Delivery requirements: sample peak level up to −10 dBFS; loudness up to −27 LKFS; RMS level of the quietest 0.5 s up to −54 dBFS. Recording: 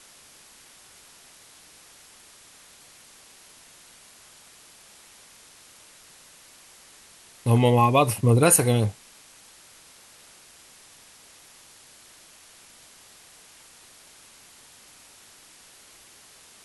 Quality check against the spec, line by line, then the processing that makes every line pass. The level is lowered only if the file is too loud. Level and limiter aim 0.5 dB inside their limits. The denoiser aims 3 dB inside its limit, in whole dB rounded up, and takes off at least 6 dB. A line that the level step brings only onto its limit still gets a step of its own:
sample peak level −6.0 dBFS: out of spec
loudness −20.0 LKFS: out of spec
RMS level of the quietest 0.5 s −52 dBFS: out of spec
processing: level −7.5 dB

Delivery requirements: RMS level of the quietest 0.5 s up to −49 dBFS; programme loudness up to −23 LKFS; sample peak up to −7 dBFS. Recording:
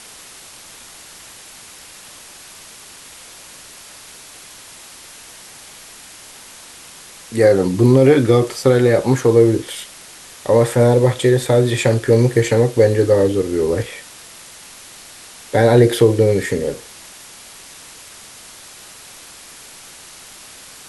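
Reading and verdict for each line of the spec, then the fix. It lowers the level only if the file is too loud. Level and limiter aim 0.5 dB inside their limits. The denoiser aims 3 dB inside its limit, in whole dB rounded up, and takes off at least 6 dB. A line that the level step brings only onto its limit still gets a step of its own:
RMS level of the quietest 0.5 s −40 dBFS: out of spec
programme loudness −15.0 LKFS: out of spec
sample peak −2.0 dBFS: out of spec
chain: broadband denoise 6 dB, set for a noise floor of −40 dBFS
level −8.5 dB

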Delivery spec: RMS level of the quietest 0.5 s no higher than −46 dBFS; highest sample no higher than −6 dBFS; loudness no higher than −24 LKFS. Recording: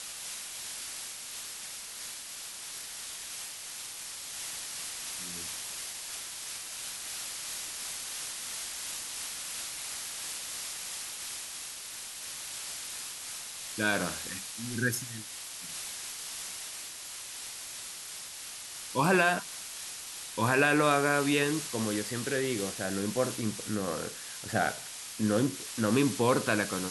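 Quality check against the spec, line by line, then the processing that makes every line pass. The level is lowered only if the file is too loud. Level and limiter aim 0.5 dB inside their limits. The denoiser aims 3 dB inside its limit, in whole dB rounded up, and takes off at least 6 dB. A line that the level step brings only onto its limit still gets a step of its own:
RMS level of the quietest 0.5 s −43 dBFS: out of spec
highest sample −11.5 dBFS: in spec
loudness −33.0 LKFS: in spec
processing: broadband denoise 6 dB, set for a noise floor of −43 dBFS

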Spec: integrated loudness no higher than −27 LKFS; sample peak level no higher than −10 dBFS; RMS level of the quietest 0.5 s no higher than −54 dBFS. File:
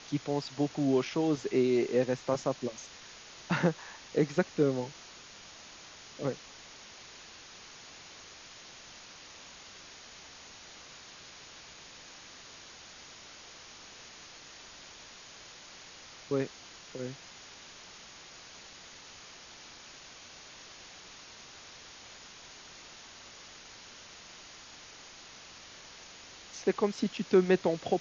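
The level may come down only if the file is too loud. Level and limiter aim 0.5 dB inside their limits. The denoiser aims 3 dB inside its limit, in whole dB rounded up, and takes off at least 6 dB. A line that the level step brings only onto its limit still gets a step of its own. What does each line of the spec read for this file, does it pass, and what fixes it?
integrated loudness −31.0 LKFS: in spec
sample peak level −12.5 dBFS: in spec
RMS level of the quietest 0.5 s −51 dBFS: out of spec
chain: broadband denoise 6 dB, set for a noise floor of −51 dBFS

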